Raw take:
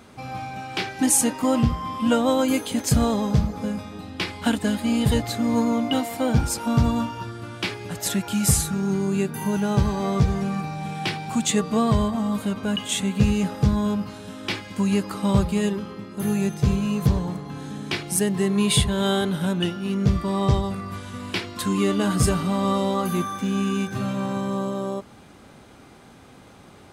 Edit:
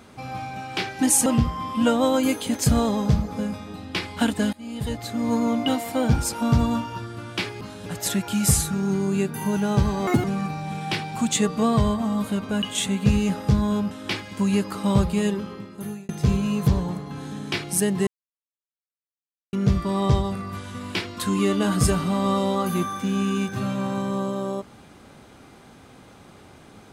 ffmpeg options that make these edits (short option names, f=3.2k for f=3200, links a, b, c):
-filter_complex "[0:a]asplit=11[a][b][c][d][e][f][g][h][i][j][k];[a]atrim=end=1.262[l];[b]atrim=start=1.508:end=4.78,asetpts=PTS-STARTPTS,afade=t=out:st=3.268:d=0.004:c=hsin:silence=0.0841395[m];[c]atrim=start=4.78:end=7.862,asetpts=PTS-STARTPTS,afade=t=in:d=0.98:silence=0.0841395[n];[d]atrim=start=14.048:end=14.302[o];[e]atrim=start=7.858:end=10.074[p];[f]atrim=start=10.07:end=10.38,asetpts=PTS-STARTPTS,asetrate=80703,aresample=44100,atrim=end_sample=7470,asetpts=PTS-STARTPTS[q];[g]atrim=start=10.376:end=14.052[r];[h]atrim=start=14.298:end=16.48,asetpts=PTS-STARTPTS,afade=t=out:st=1.642:d=0.54[s];[i]atrim=start=16.48:end=18.46,asetpts=PTS-STARTPTS,afade=t=in:d=0.004:c=hsin,afade=t=out:st=1.976:d=0.004:c=hsin[t];[j]atrim=start=18.46:end=19.92,asetpts=PTS-STARTPTS,volume=0[u];[k]atrim=start=19.92,asetpts=PTS-STARTPTS,afade=t=in:d=0.004:c=hsin[v];[m][n]concat=n=2:v=0:a=1[w];[l][w]acrossfade=d=0.004:c1=hsin:c2=hsin[x];[x][o]acrossfade=d=0.004:c1=hsin:c2=hsin[y];[y][p]acrossfade=d=0.004:c1=hsin:c2=hsin[z];[z][q]acrossfade=d=0.004:c1=hsin:c2=hsin[aa];[aa][r]acrossfade=d=0.004:c1=hsin:c2=hsin[ab];[s][t][u][v]concat=n=4:v=0:a=1[ac];[ab][ac]acrossfade=d=0.004:c1=hsin:c2=hsin"